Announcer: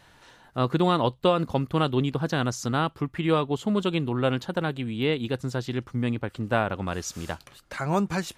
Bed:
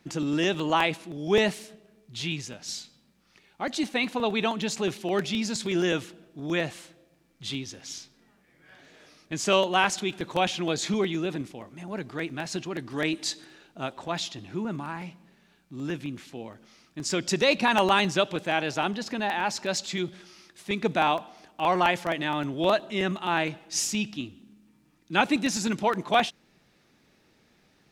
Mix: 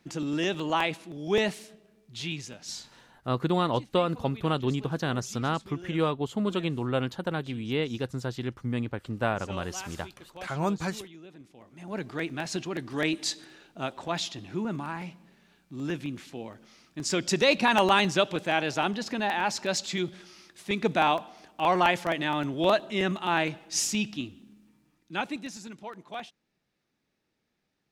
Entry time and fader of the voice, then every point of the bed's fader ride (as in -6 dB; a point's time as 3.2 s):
2.70 s, -3.5 dB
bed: 3.07 s -3 dB
3.28 s -19 dB
11.33 s -19 dB
11.95 s 0 dB
24.63 s 0 dB
25.72 s -16 dB